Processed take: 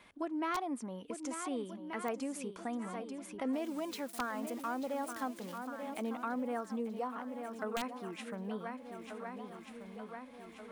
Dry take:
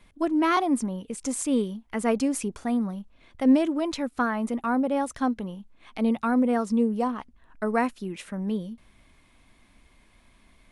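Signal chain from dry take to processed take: 3.53–5.58 switching spikes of -28.5 dBFS; HPF 600 Hz 6 dB/oct; high shelf 2100 Hz -3 dB; swung echo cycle 1.482 s, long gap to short 1.5:1, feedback 36%, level -11.5 dB; wrapped overs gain 16 dB; compressor 2:1, threshold -51 dBFS, peak gain reduction 15.5 dB; high shelf 4200 Hz -6.5 dB; gain +5.5 dB

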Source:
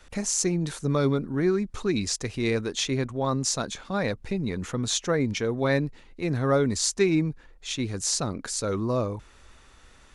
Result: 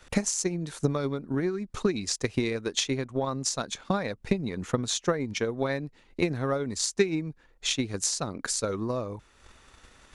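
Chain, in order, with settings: low shelf 63 Hz -7 dB; compressor 2.5:1, threshold -30 dBFS, peak gain reduction 8.5 dB; transient shaper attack +10 dB, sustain -5 dB

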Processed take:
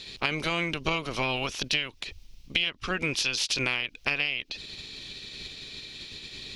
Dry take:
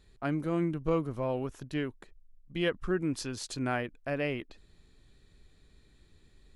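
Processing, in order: spectral limiter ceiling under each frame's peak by 18 dB; band shelf 3700 Hz +15 dB; compressor 12:1, threshold -32 dBFS, peak gain reduction 20 dB; gain +8 dB

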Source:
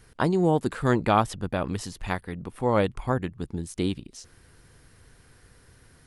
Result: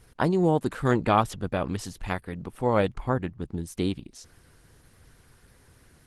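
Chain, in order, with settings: 2.94–3.58 high shelf 3500 Hz -6 dB; Opus 16 kbps 48000 Hz

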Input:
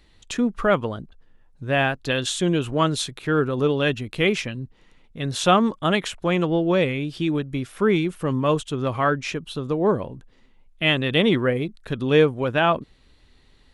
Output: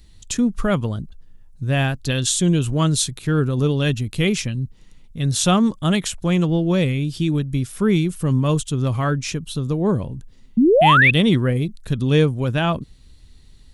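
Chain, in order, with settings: tone controls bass +14 dB, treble +15 dB; painted sound rise, 10.57–11.11, 210–2700 Hz -9 dBFS; gain -4 dB

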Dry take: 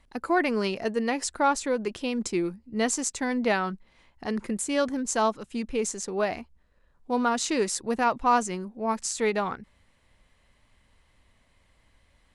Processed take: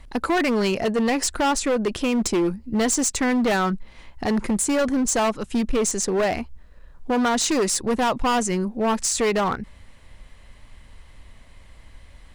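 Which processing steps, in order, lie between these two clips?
low shelf 74 Hz +9.5 dB; in parallel at +2 dB: compressor, threshold -32 dBFS, peak gain reduction 14.5 dB; on the sum: hard clip -22 dBFS, distortion -9 dB; gain +4.5 dB

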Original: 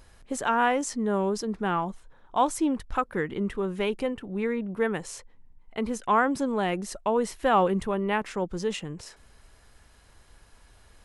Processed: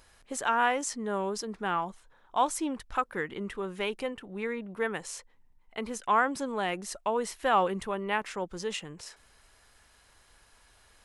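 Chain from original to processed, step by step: low shelf 480 Hz -10 dB

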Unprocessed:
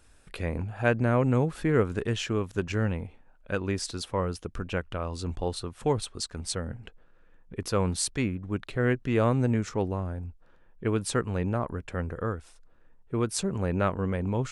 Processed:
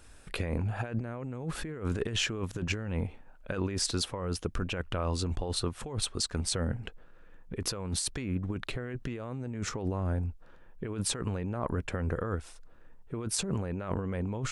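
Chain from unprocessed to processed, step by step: negative-ratio compressor -33 dBFS, ratio -1

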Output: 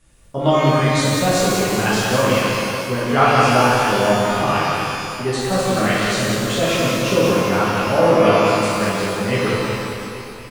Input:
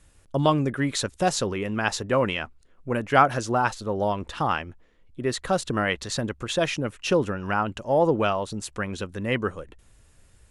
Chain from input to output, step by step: reverse bouncing-ball echo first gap 0.18 s, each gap 1.1×, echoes 5; shimmer reverb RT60 1.3 s, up +12 st, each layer -8 dB, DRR -7 dB; gain -2.5 dB

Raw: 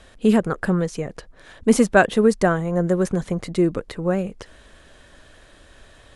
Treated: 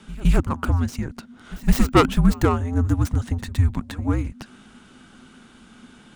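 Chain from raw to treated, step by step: tracing distortion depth 0.15 ms; pre-echo 0.162 s -18.5 dB; frequency shift -260 Hz

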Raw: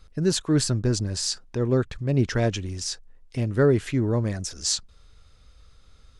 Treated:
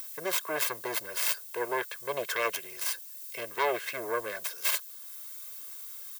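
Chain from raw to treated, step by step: self-modulated delay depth 0.85 ms; HPF 180 Hz 12 dB/oct; limiter -16.5 dBFS, peak gain reduction 7.5 dB; three-band isolator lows -17 dB, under 360 Hz, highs -15 dB, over 2800 Hz; added noise blue -61 dBFS; upward compressor, threshold -52 dBFS; tilt +3.5 dB/oct; comb 1.9 ms, depth 80%

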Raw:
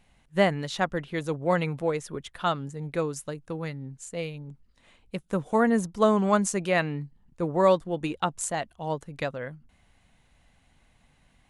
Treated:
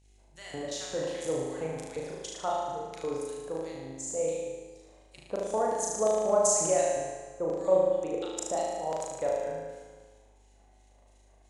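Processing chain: compressor 3:1, threshold -24 dBFS, peak gain reduction 7.5 dB; transient shaper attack 0 dB, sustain +12 dB; LFO band-pass square 2.8 Hz 580–6700 Hz; buzz 50 Hz, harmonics 18, -66 dBFS -8 dB/oct; flutter echo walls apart 6.4 m, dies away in 1.1 s; Schroeder reverb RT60 1.4 s, combs from 28 ms, DRR 6 dB; gain +2 dB

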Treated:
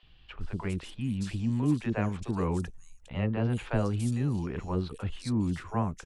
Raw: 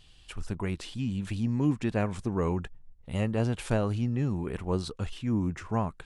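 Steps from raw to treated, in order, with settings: three bands offset in time mids, lows, highs 30/410 ms, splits 500/3700 Hz

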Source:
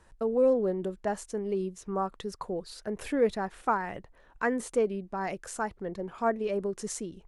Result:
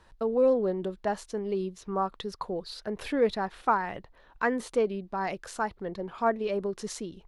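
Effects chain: graphic EQ 1000/4000/8000 Hz +3/+8/-7 dB

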